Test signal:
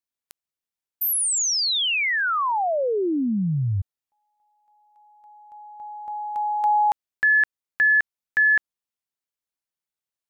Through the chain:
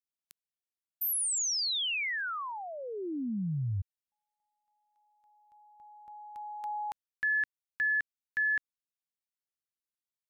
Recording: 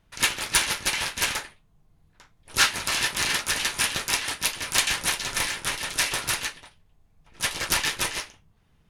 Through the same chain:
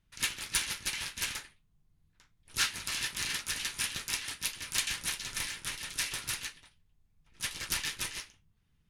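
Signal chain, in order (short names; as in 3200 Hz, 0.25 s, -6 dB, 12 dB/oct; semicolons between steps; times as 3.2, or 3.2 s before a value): bell 660 Hz -10 dB 1.9 oct; gain -8 dB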